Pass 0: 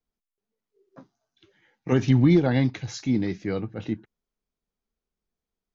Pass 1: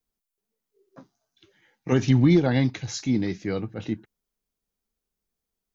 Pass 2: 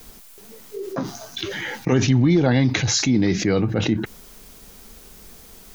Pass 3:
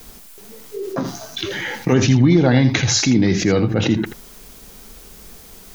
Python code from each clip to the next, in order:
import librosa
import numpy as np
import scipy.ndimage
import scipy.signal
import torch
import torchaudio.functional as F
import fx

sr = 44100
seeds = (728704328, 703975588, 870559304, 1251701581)

y1 = fx.high_shelf(x, sr, hz=6200.0, db=10.0)
y2 = fx.env_flatten(y1, sr, amount_pct=70)
y3 = y2 + 10.0 ** (-11.0 / 20.0) * np.pad(y2, (int(81 * sr / 1000.0), 0))[:len(y2)]
y3 = F.gain(torch.from_numpy(y3), 3.0).numpy()